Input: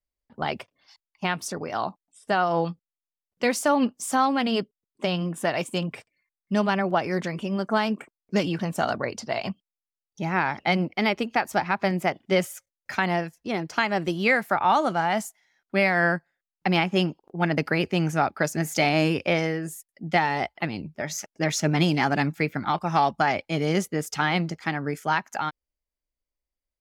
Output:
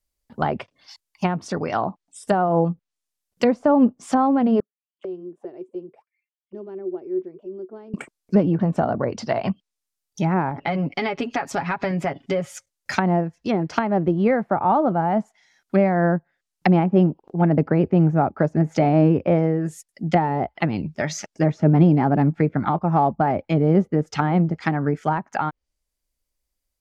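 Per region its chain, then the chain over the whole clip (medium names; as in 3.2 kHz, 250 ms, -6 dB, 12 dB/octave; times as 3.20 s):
4.60–7.94 s: treble shelf 6 kHz -5.5 dB + auto-wah 370–3500 Hz, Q 16, down, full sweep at -25.5 dBFS
10.49–12.51 s: comb 7.2 ms, depth 67% + compression 2.5:1, threshold -29 dBFS
whole clip: low-pass that closes with the level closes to 750 Hz, closed at -22.5 dBFS; tone controls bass +3 dB, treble +7 dB; trim +6 dB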